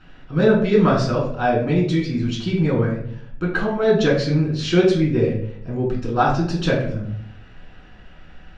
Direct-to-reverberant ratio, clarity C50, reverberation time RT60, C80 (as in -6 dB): -4.5 dB, 5.0 dB, 0.65 s, 8.5 dB